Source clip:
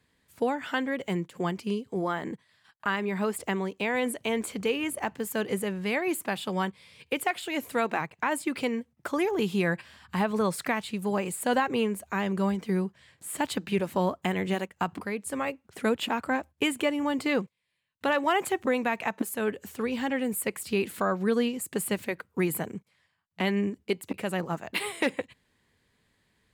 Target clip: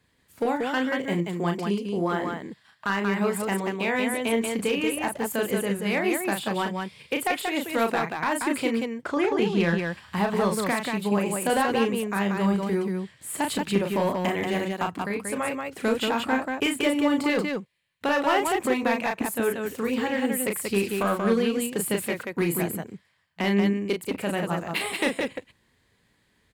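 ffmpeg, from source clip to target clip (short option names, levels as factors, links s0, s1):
-filter_complex "[0:a]asettb=1/sr,asplit=3[s0][s1][s2];[s0]atrim=end=8.954[s3];[s1]atrim=start=8.95:end=9.75,asetpts=PTS-STARTPTS,afade=t=in:d=0.004:c=qsin,afade=t=out:st=0.796:d=0.004:c=qsin,lowpass=5700[s4];[s2]atrim=start=9.746[s5];[s3][s4]acrossfade=d=0.004:c1=hsin:c2=qsin[s6];[s6][s5]acrossfade=d=0.004:c1=qsin:c2=hsin,asoftclip=type=hard:threshold=0.106,aecho=1:1:34.99|183.7:0.562|0.631,volume=1.19"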